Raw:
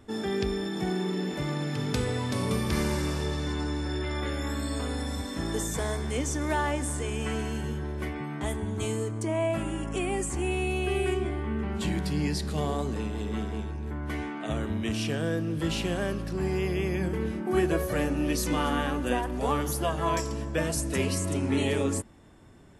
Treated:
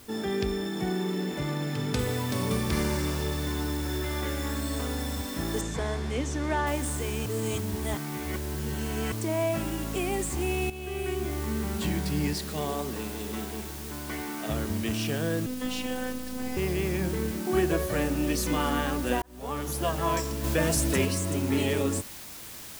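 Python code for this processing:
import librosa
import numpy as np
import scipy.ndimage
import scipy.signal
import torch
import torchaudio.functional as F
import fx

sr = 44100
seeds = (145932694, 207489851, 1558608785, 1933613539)

y = fx.noise_floor_step(x, sr, seeds[0], at_s=1.99, before_db=-53, after_db=-43, tilt_db=0.0)
y = fx.air_absorb(y, sr, metres=78.0, at=(5.61, 6.67))
y = fx.low_shelf(y, sr, hz=150.0, db=-9.5, at=(12.33, 14.29))
y = fx.robotise(y, sr, hz=254.0, at=(15.46, 16.57))
y = fx.env_flatten(y, sr, amount_pct=50, at=(20.43, 21.04), fade=0.02)
y = fx.edit(y, sr, fx.reverse_span(start_s=7.26, length_s=1.86),
    fx.fade_in_from(start_s=10.7, length_s=0.71, floor_db=-12.5),
    fx.fade_in_span(start_s=19.22, length_s=0.64), tone=tone)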